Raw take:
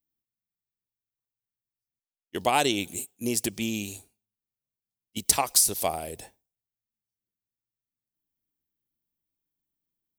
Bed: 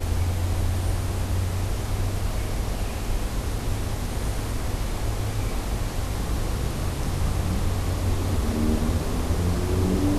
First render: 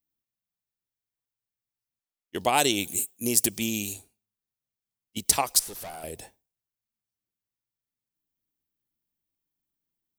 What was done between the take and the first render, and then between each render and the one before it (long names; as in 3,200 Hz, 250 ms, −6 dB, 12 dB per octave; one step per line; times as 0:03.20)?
0:02.57–0:03.94: high-shelf EQ 7,100 Hz +11 dB
0:05.59–0:06.04: tube saturation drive 36 dB, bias 0.7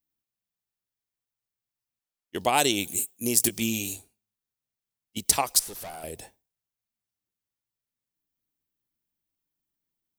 0:03.38–0:03.96: double-tracking delay 17 ms −7 dB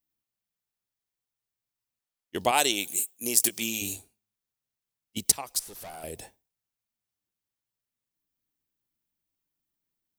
0:02.51–0:03.82: high-pass filter 500 Hz 6 dB per octave
0:05.32–0:06.18: fade in, from −15 dB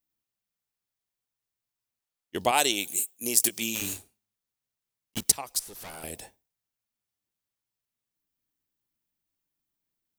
0:03.75–0:05.29: one scale factor per block 3 bits
0:05.79–0:06.20: ceiling on every frequency bin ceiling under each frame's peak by 13 dB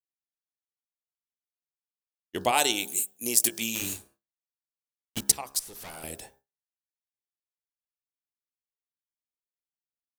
hum removal 67.6 Hz, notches 26
noise gate with hold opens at −49 dBFS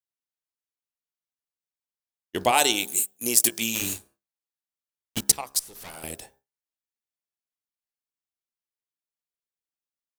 leveller curve on the samples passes 1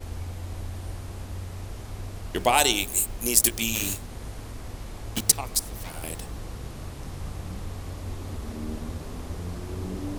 mix in bed −10.5 dB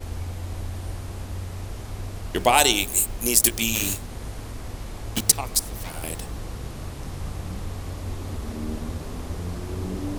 level +3 dB
brickwall limiter −3 dBFS, peak gain reduction 3 dB